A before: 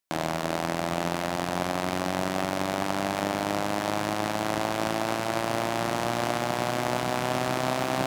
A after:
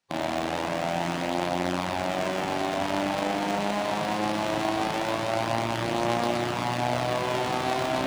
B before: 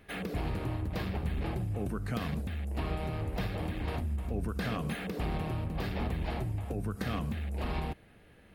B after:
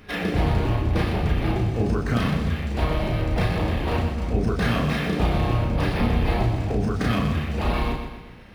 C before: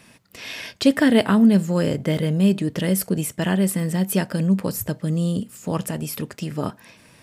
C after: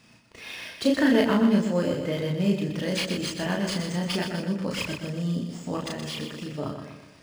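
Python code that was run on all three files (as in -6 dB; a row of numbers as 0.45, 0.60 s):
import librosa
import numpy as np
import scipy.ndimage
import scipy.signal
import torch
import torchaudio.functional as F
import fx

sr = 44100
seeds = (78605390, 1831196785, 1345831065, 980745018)

p1 = fx.spec_quant(x, sr, step_db=15)
p2 = fx.high_shelf(p1, sr, hz=12000.0, db=8.0)
p3 = fx.doubler(p2, sr, ms=34.0, db=-2.0)
p4 = p3 + fx.echo_feedback(p3, sr, ms=123, feedback_pct=47, wet_db=-7, dry=0)
p5 = fx.dynamic_eq(p4, sr, hz=150.0, q=1.4, threshold_db=-32.0, ratio=4.0, max_db=-4)
p6 = np.interp(np.arange(len(p5)), np.arange(len(p5))[::3], p5[::3])
y = p6 * 10.0 ** (-9 / 20.0) / np.max(np.abs(p6))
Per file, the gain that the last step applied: -1.5, +9.5, -6.0 dB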